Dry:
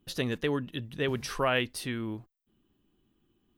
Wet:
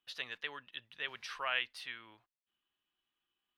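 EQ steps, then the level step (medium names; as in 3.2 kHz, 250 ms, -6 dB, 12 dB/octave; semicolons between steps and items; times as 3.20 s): three-band isolator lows -23 dB, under 510 Hz, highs -21 dB, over 4 kHz; amplifier tone stack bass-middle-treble 5-5-5; +6.5 dB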